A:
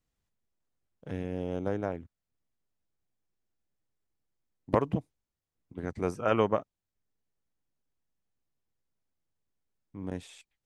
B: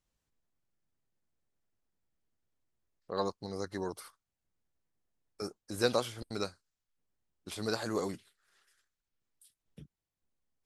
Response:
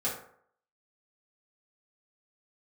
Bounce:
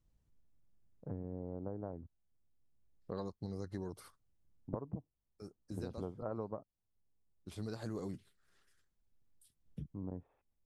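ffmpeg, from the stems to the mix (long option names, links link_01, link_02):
-filter_complex "[0:a]lowpass=frequency=1100:width=0.5412,lowpass=frequency=1100:width=1.3066,volume=-4.5dB,asplit=2[link_01][link_02];[1:a]lowshelf=frequency=410:gain=11.5,volume=-6dB[link_03];[link_02]apad=whole_len=470013[link_04];[link_03][link_04]sidechaincompress=threshold=-46dB:ratio=12:attack=16:release=999[link_05];[link_01][link_05]amix=inputs=2:normalize=0,lowshelf=frequency=210:gain=6.5,acompressor=threshold=-38dB:ratio=6"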